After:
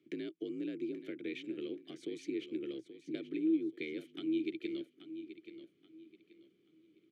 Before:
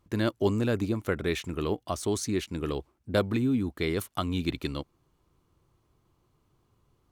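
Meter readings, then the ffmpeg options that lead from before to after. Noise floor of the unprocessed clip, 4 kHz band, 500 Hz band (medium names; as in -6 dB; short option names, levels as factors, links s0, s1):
-72 dBFS, -13.0 dB, -11.5 dB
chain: -filter_complex "[0:a]acompressor=threshold=0.00891:ratio=4,asplit=3[s0][s1][s2];[s0]bandpass=f=270:t=q:w=8,volume=1[s3];[s1]bandpass=f=2290:t=q:w=8,volume=0.501[s4];[s2]bandpass=f=3010:t=q:w=8,volume=0.355[s5];[s3][s4][s5]amix=inputs=3:normalize=0,afreqshift=55,aecho=1:1:830|1660|2490:0.251|0.0754|0.0226,volume=3.98"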